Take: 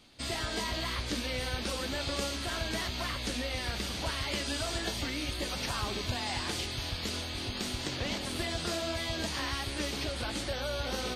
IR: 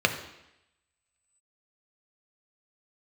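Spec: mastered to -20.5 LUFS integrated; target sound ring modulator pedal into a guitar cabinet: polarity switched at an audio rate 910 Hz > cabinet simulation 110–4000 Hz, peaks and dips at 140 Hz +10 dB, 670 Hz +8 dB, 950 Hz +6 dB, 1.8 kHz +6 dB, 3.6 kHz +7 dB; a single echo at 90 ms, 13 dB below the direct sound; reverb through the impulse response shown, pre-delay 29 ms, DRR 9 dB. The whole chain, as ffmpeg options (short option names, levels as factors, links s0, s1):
-filter_complex "[0:a]aecho=1:1:90:0.224,asplit=2[s0][s1];[1:a]atrim=start_sample=2205,adelay=29[s2];[s1][s2]afir=irnorm=-1:irlink=0,volume=0.0668[s3];[s0][s3]amix=inputs=2:normalize=0,aeval=exprs='val(0)*sgn(sin(2*PI*910*n/s))':c=same,highpass=110,equalizer=f=140:t=q:w=4:g=10,equalizer=f=670:t=q:w=4:g=8,equalizer=f=950:t=q:w=4:g=6,equalizer=f=1800:t=q:w=4:g=6,equalizer=f=3600:t=q:w=4:g=7,lowpass=f=4000:w=0.5412,lowpass=f=4000:w=1.3066,volume=2.82"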